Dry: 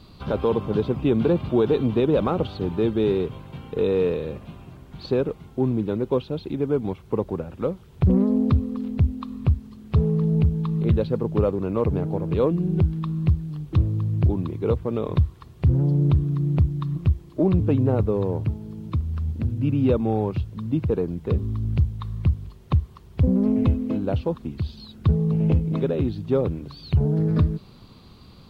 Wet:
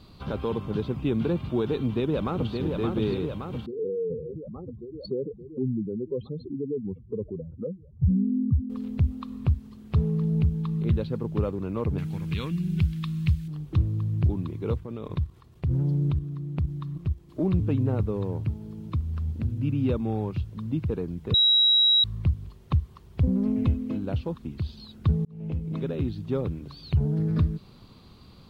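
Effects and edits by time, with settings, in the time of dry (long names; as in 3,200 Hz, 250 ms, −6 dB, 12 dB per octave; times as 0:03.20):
0:01.77–0:02.57: delay throw 570 ms, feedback 70%, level −4.5 dB
0:03.66–0:08.70: expanding power law on the bin magnitudes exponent 2.7
0:11.98–0:13.48: drawn EQ curve 190 Hz 0 dB, 290 Hz −7 dB, 580 Hz −14 dB, 2,200 Hz +10 dB
0:14.80–0:17.29: output level in coarse steps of 10 dB
0:21.34–0:22.04: beep over 3,860 Hz −13 dBFS
0:25.25–0:25.93: fade in
whole clip: dynamic equaliser 580 Hz, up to −6 dB, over −36 dBFS, Q 0.79; level −3 dB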